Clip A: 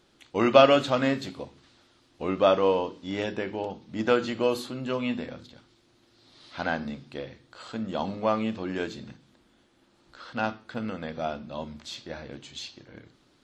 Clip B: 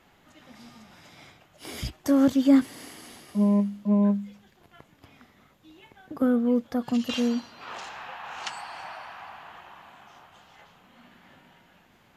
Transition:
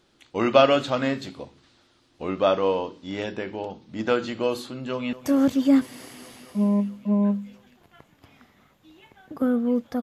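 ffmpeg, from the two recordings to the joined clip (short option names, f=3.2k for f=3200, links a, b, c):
-filter_complex "[0:a]apad=whole_dur=10.02,atrim=end=10.02,atrim=end=5.132[a];[1:a]atrim=start=1.928:end=6.82[b];[a][b]acrossfade=d=0.004:c1=hsin:c2=hsin,asplit=2[c][d];[d]afade=t=in:st=4.78:d=0.01,afade=t=out:st=5.13:d=0.01,aecho=0:1:220|440|660|880|1100|1320|1540|1760|1980|2200|2420|2640:0.16788|0.142698|0.121294|0.1031|0.0876346|0.0744894|0.063316|0.0538186|0.0457458|0.0388839|0.0330514|0.0280937[e];[c][e]amix=inputs=2:normalize=0"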